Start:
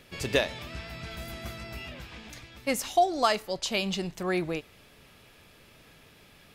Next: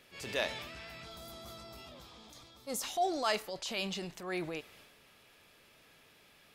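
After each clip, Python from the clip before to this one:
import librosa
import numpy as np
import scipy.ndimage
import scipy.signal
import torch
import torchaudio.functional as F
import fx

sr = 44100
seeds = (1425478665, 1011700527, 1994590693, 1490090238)

y = fx.low_shelf(x, sr, hz=230.0, db=-10.5)
y = fx.spec_box(y, sr, start_s=1.05, length_s=1.78, low_hz=1400.0, high_hz=3100.0, gain_db=-11)
y = fx.transient(y, sr, attack_db=-7, sustain_db=5)
y = y * 10.0 ** (-5.0 / 20.0)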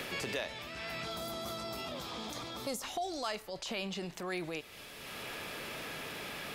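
y = fx.band_squash(x, sr, depth_pct=100)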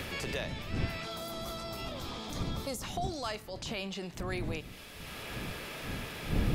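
y = fx.dmg_wind(x, sr, seeds[0], corner_hz=170.0, level_db=-39.0)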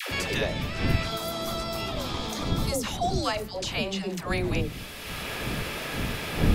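y = fx.dispersion(x, sr, late='lows', ms=112.0, hz=550.0)
y = y * 10.0 ** (8.5 / 20.0)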